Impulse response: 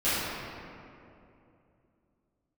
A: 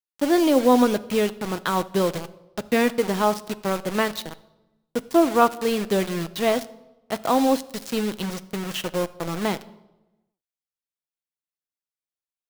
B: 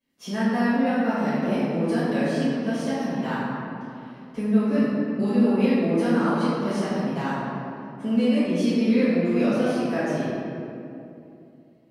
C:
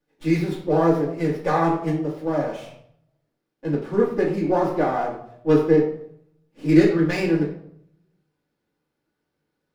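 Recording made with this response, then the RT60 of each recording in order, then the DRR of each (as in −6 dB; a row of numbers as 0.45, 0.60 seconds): B; 1.0, 2.7, 0.70 seconds; 11.5, −15.5, −6.5 decibels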